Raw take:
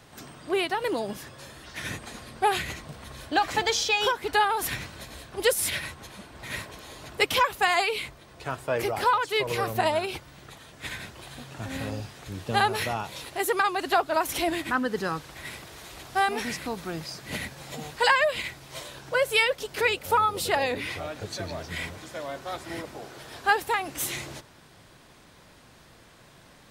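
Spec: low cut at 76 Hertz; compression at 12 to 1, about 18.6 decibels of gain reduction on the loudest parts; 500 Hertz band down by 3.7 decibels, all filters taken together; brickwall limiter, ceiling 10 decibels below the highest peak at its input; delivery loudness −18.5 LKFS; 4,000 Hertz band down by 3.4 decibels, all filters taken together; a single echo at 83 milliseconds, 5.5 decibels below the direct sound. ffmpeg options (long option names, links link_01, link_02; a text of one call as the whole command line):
ffmpeg -i in.wav -af "highpass=76,equalizer=frequency=500:width_type=o:gain=-4.5,equalizer=frequency=4000:width_type=o:gain=-4.5,acompressor=threshold=-38dB:ratio=12,alimiter=level_in=12dB:limit=-24dB:level=0:latency=1,volume=-12dB,aecho=1:1:83:0.531,volume=26dB" out.wav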